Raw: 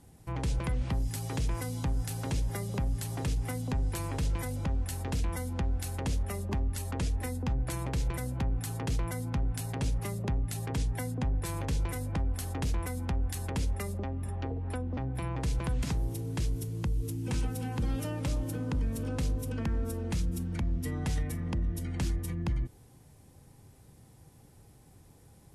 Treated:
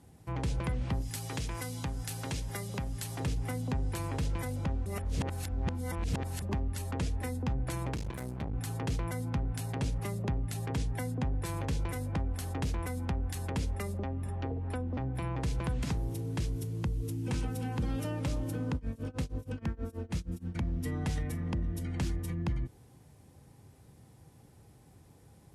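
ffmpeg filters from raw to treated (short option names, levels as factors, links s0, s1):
-filter_complex "[0:a]asettb=1/sr,asplit=3[s0][s1][s2];[s0]atrim=end=1.014[s3];[s1]atrim=start=1.01:end=3.2,asetpts=PTS-STARTPTS,afade=t=in:d=0.004:c=qsin,afade=t=out:st=2.186:d=0.004:c=qsin,tiltshelf=f=1200:g=-4[s4];[s2]atrim=start=3.196[s5];[s3][s4]acrossfade=d=0.004:c1=hsin:c2=qsin[s6];[s6][s5]acrossfade=d=0.004:c1=qsin:c2=hsin,asettb=1/sr,asplit=3[s7][s8][s9];[s7]atrim=end=7.944[s10];[s8]atrim=start=7.94:end=8.54,asetpts=PTS-STARTPTS,afade=t=in:d=0.004:c=qsin,afade=t=out:st=0.596:d=0.004:c=qsin,aeval=exprs='max(val(0),0)':c=same[s11];[s9]atrim=start=8.536[s12];[s10][s11]acrossfade=d=0.004:c1=hsin:c2=qsin[s13];[s13][s12]acrossfade=d=0.004:c1=qsin:c2=hsin,asplit=3[s14][s15][s16];[s14]afade=t=out:st=18.75:d=0.02[s17];[s15]tremolo=f=6.3:d=0.95,afade=t=in:st=18.75:d=0.02,afade=t=out:st=20.54:d=0.02[s18];[s16]afade=t=in:st=20.54:d=0.02[s19];[s17][s18][s19]amix=inputs=3:normalize=0,asplit=3[s20][s21][s22];[s20]atrim=end=4.862[s23];[s21]atrim=start=4.858:end=6.422,asetpts=PTS-STARTPTS,areverse[s24];[s22]atrim=start=6.418[s25];[s23][s24]acrossfade=d=0.004:c1=hsin:c2=hsin[s26];[s26][s25]acrossfade=d=0.004:c1=hsin:c2=hsin,highpass=54,highshelf=f=5600:g=-5"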